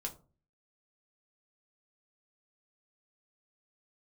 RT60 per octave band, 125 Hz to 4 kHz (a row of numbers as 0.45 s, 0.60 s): 0.60 s, 0.50 s, 0.40 s, 0.35 s, 0.20 s, 0.20 s